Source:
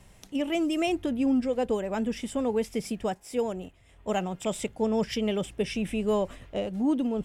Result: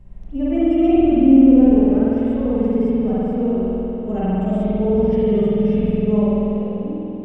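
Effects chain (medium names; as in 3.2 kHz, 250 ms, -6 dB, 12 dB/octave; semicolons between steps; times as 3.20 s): fade out at the end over 1.41 s; tilt EQ -4.5 dB/octave; spring tank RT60 3.6 s, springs 48 ms, chirp 35 ms, DRR -9.5 dB; harmonic-percussive split percussive -9 dB; trim -5.5 dB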